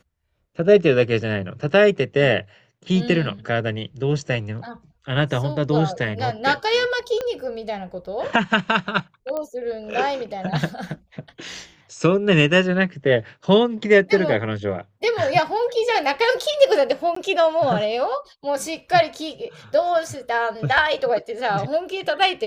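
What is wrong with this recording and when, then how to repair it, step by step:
7.21 s: pop -14 dBFS
9.37 s: pop -16 dBFS
17.15–17.16 s: dropout 14 ms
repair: de-click; interpolate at 17.15 s, 14 ms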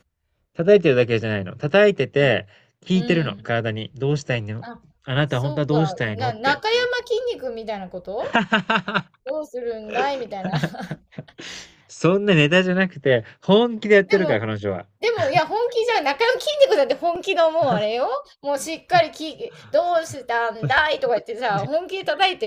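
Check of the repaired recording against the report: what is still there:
7.21 s: pop

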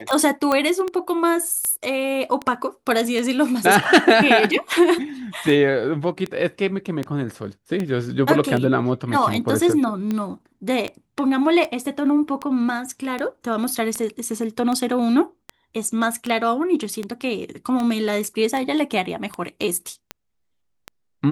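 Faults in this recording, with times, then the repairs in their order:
tick 78 rpm -13 dBFS
0.52 s: pop -8 dBFS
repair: de-click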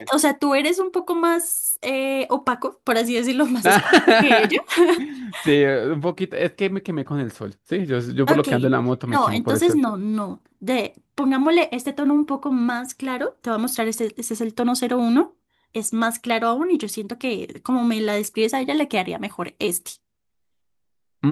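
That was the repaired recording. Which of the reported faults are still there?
nothing left

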